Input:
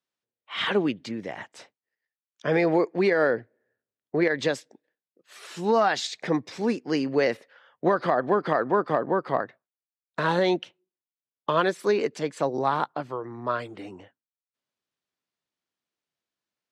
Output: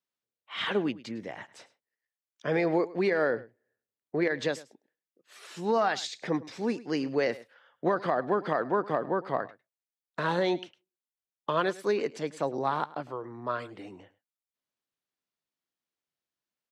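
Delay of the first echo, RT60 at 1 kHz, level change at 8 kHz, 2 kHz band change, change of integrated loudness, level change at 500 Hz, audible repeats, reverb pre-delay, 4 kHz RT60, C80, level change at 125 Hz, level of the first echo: 105 ms, no reverb, -4.5 dB, -4.5 dB, -4.5 dB, -4.5 dB, 1, no reverb, no reverb, no reverb, -4.5 dB, -19.0 dB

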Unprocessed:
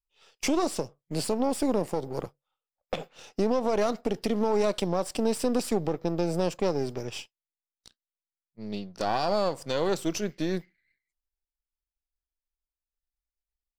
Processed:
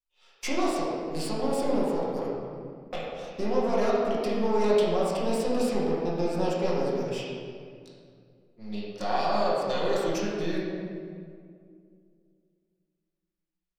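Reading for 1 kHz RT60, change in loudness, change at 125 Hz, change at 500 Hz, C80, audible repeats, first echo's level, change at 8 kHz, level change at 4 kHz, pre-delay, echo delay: 2.0 s, +0.5 dB, -1.0 dB, +1.5 dB, 0.5 dB, no echo, no echo, -4.5 dB, -0.5 dB, 6 ms, no echo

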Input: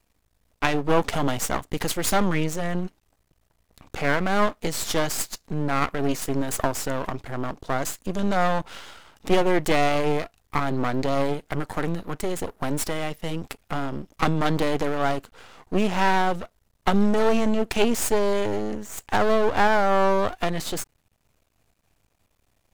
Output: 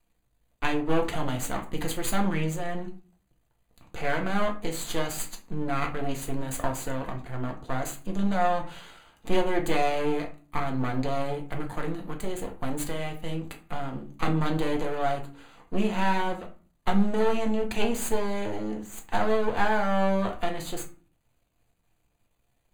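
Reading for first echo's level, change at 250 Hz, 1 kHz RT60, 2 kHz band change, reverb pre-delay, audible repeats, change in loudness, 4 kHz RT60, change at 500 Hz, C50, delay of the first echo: no echo, -3.5 dB, 0.40 s, -5.5 dB, 3 ms, no echo, -4.5 dB, 0.25 s, -5.0 dB, 11.5 dB, no echo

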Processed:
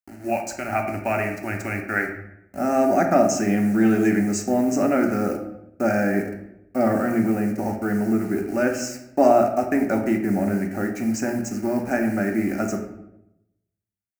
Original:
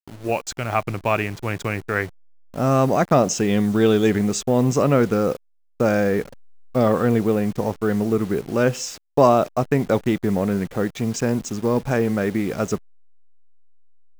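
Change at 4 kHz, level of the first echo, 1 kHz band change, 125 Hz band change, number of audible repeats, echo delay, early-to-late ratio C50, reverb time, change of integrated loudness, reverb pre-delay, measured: -7.5 dB, no echo, -1.0 dB, -7.0 dB, no echo, no echo, 7.0 dB, 0.85 s, -1.5 dB, 4 ms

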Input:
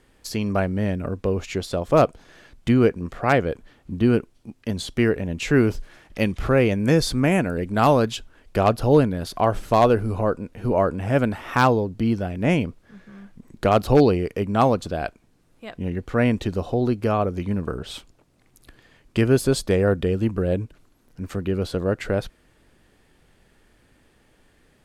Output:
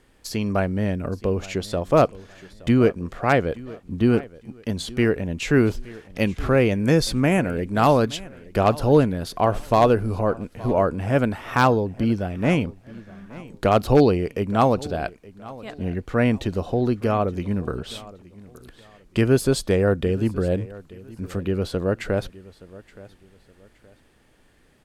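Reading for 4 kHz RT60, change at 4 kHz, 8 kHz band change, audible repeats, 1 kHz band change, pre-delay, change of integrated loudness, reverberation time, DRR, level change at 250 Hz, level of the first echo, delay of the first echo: no reverb, 0.0 dB, 0.0 dB, 2, 0.0 dB, no reverb, 0.0 dB, no reverb, no reverb, 0.0 dB, -20.0 dB, 871 ms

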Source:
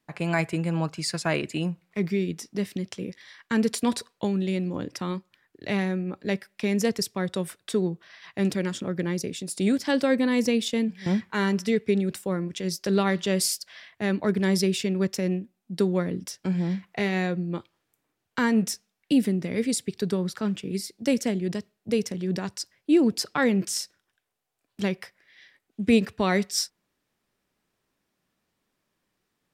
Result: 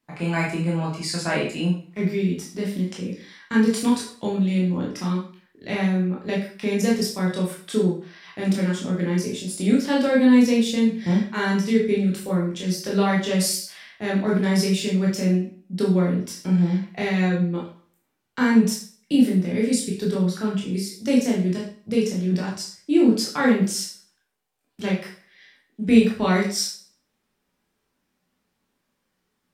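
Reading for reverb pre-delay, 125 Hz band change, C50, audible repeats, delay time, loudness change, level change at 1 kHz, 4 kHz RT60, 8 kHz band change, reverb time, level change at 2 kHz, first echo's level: 8 ms, +5.5 dB, 5.5 dB, no echo, no echo, +4.5 dB, +3.0 dB, 0.45 s, +2.0 dB, 0.45 s, +2.5 dB, no echo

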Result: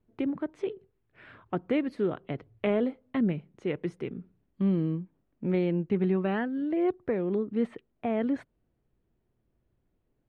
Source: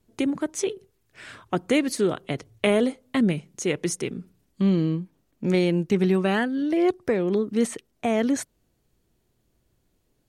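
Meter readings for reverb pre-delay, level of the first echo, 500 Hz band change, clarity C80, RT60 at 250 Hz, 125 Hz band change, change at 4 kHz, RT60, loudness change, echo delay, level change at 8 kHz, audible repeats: no reverb, no echo, -5.5 dB, no reverb, no reverb, -5.0 dB, -15.0 dB, no reverb, -5.5 dB, no echo, under -35 dB, no echo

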